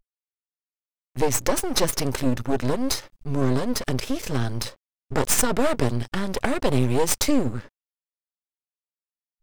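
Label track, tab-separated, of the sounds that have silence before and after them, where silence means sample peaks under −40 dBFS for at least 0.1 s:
1.160000	3.070000	sound
3.220000	4.740000	sound
5.110000	7.670000	sound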